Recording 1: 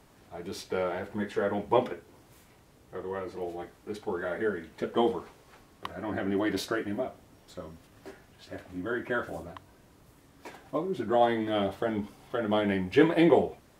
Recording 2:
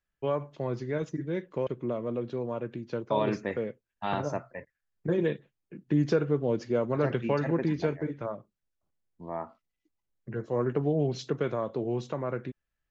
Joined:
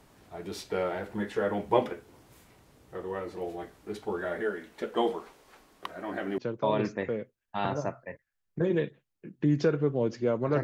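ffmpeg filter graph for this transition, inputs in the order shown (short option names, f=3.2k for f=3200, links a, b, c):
-filter_complex "[0:a]asettb=1/sr,asplit=3[a][b][c];[a]atrim=end=4.414[d];[b]atrim=start=4.41:end=6.38,asetpts=PTS-STARTPTS,afade=t=in:d=0.004:c=qsin,afade=t=out:st=1.966:d=0.004:c=qsin,equalizer=f=97:t=o:w=1.7:g=-14[e];[c]atrim=start=6.376[f];[d][e]acrossfade=d=0.004:c1=hsin:c2=qsin[g];[g][f]acrossfade=d=0.004:c1=qsin:c2=hsin,apad=whole_dur=10.63,atrim=end=10.63,atrim=end=6.382[h];[1:a]atrim=start=2.858:end=7.11[i];[h][i]acrossfade=d=0.004:c1=hsin:c2=hsin"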